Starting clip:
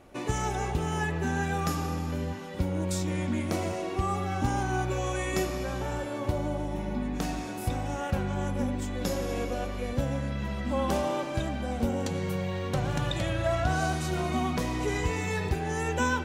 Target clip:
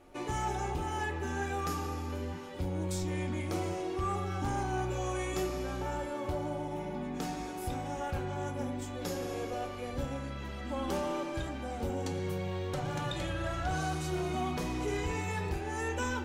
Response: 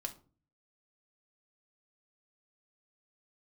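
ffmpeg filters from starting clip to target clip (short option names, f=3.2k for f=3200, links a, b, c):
-filter_complex "[0:a]bandreject=f=50:t=h:w=6,bandreject=f=100:t=h:w=6,bandreject=f=150:t=h:w=6,bandreject=f=200:t=h:w=6,bandreject=f=250:t=h:w=6[a];[1:a]atrim=start_sample=2205,atrim=end_sample=3528,asetrate=57330,aresample=44100[b];[a][b]afir=irnorm=-1:irlink=0,asoftclip=type=tanh:threshold=-24.5dB"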